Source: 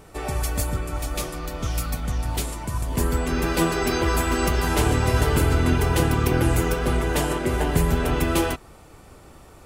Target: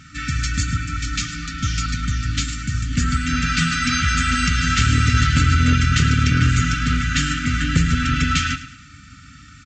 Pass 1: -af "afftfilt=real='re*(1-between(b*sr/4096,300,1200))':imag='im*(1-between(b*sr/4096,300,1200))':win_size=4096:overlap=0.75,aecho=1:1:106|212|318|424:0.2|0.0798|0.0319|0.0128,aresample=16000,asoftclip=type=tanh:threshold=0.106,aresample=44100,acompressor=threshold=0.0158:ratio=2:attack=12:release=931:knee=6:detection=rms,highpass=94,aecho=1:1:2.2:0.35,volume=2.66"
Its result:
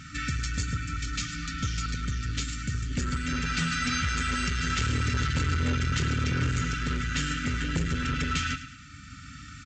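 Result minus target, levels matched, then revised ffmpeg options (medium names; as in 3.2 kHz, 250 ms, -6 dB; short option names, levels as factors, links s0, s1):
compression: peak gain reduction +8 dB; saturation: distortion +12 dB
-af "afftfilt=real='re*(1-between(b*sr/4096,300,1200))':imag='im*(1-between(b*sr/4096,300,1200))':win_size=4096:overlap=0.75,aecho=1:1:106|212|318|424:0.2|0.0798|0.0319|0.0128,aresample=16000,asoftclip=type=tanh:threshold=0.299,aresample=44100,highpass=94,aecho=1:1:2.2:0.35,volume=2.66"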